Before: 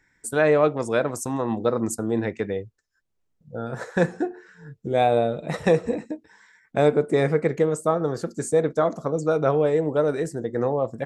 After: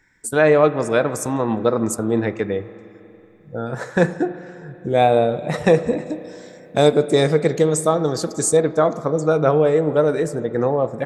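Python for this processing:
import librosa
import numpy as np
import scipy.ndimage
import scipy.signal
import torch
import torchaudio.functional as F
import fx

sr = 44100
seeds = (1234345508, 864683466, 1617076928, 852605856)

y = fx.high_shelf_res(x, sr, hz=2900.0, db=8.0, q=1.5, at=(6.06, 8.57))
y = fx.rev_spring(y, sr, rt60_s=3.3, pass_ms=(32, 45), chirp_ms=50, drr_db=14.0)
y = F.gain(torch.from_numpy(y), 4.5).numpy()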